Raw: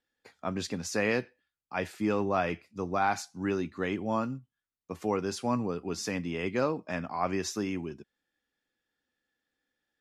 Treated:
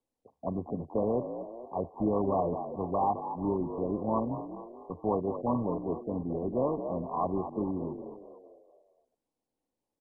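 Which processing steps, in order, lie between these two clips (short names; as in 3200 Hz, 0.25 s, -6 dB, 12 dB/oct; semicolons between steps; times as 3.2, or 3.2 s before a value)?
frequency-shifting echo 0.224 s, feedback 49%, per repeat +60 Hz, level -9.5 dB; downsampling 11025 Hz; MP2 8 kbps 24000 Hz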